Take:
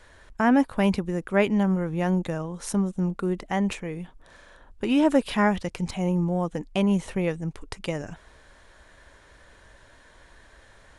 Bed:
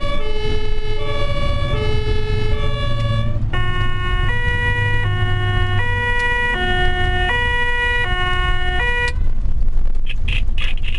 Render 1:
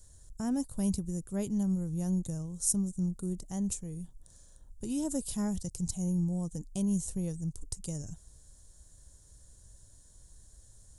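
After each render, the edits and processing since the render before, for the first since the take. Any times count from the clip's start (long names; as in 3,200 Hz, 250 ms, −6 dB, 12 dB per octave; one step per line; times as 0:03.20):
drawn EQ curve 130 Hz 0 dB, 250 Hz −11 dB, 2,300 Hz −29 dB, 7,200 Hz +8 dB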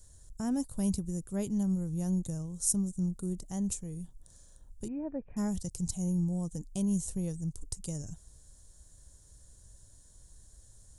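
0:04.88–0:05.37: Chebyshev low-pass with heavy ripple 2,500 Hz, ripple 6 dB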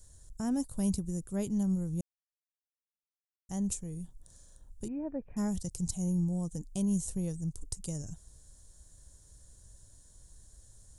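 0:02.01–0:03.49: silence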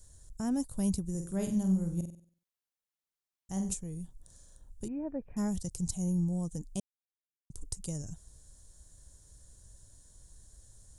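0:01.10–0:03.74: flutter between parallel walls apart 8.1 metres, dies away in 0.46 s
0:06.80–0:07.50: silence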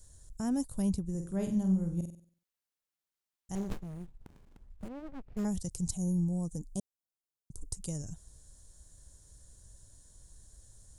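0:00.82–0:02.02: high-shelf EQ 4,800 Hz −9.5 dB
0:03.55–0:05.45: windowed peak hold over 65 samples
0:05.97–0:07.73: parametric band 2,500 Hz −14.5 dB 0.95 octaves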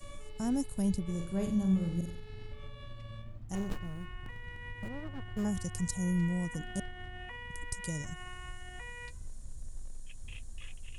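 mix in bed −27 dB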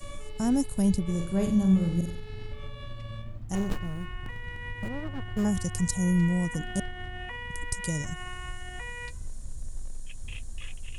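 level +6.5 dB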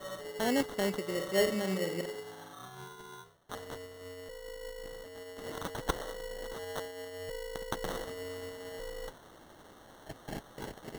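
high-pass filter sweep 470 Hz → 2,900 Hz, 0:02.22–0:02.92
decimation without filtering 18×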